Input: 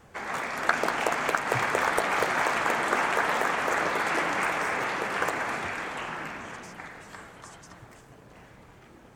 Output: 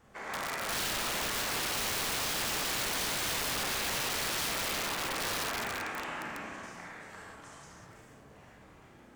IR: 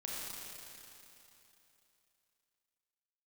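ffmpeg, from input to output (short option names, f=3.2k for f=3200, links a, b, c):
-filter_complex "[1:a]atrim=start_sample=2205,afade=t=out:st=0.25:d=0.01,atrim=end_sample=11466[a];[0:a][a]afir=irnorm=-1:irlink=0,aeval=exprs='(mod(17.8*val(0)+1,2)-1)/17.8':c=same,volume=-3dB"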